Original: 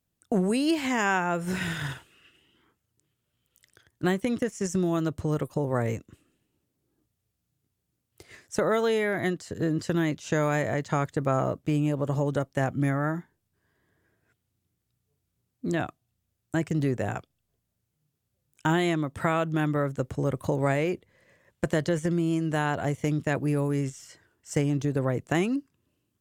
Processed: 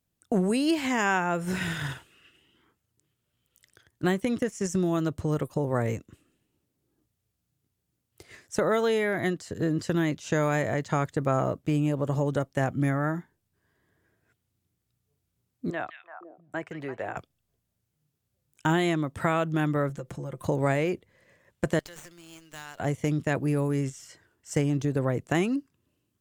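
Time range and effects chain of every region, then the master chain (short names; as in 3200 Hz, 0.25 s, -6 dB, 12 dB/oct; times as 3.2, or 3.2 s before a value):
15.7–17.17 three-band isolator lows -16 dB, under 450 Hz, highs -16 dB, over 2700 Hz + delay with a stepping band-pass 0.169 s, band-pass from 2800 Hz, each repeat -1.4 oct, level -4 dB
19.89–20.45 comb 5.8 ms, depth 78% + compressor 4:1, threshold -34 dBFS
21.79–22.8 differentiator + running maximum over 3 samples
whole clip: dry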